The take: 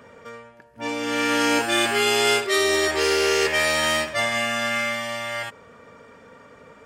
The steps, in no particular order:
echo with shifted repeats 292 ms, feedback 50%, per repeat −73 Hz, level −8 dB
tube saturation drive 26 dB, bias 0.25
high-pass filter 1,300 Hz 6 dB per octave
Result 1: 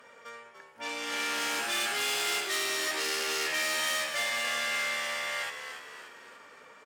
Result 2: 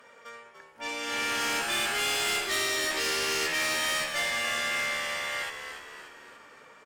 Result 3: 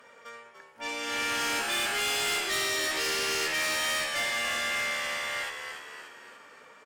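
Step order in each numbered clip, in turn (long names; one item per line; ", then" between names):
tube saturation, then echo with shifted repeats, then high-pass filter
high-pass filter, then tube saturation, then echo with shifted repeats
echo with shifted repeats, then high-pass filter, then tube saturation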